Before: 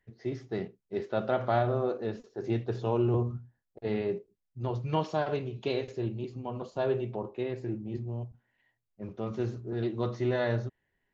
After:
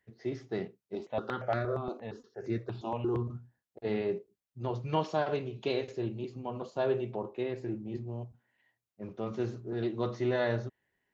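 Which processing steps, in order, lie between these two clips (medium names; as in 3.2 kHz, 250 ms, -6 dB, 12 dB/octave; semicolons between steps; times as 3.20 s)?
high-pass 40 Hz; bass shelf 110 Hz -8.5 dB; 0.95–3.30 s: stepped phaser 8.6 Hz 470–3100 Hz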